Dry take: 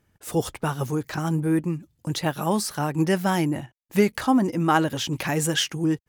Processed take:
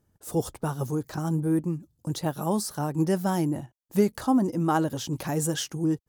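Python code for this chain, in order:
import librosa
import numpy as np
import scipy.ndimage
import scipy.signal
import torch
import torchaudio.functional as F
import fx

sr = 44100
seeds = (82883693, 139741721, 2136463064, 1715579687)

y = fx.peak_eq(x, sr, hz=2300.0, db=-12.0, octaves=1.4)
y = F.gain(torch.from_numpy(y), -2.0).numpy()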